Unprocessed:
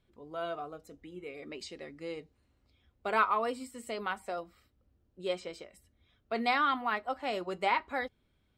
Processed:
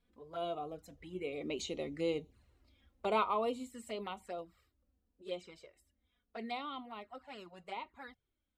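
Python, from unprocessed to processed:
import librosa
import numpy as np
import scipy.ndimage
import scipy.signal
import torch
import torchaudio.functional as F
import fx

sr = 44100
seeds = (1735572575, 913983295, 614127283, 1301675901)

y = fx.doppler_pass(x, sr, speed_mps=5, closest_m=4.0, pass_at_s=1.89)
y = fx.env_flanger(y, sr, rest_ms=4.3, full_db=-43.0)
y = y * 10.0 ** (7.0 / 20.0)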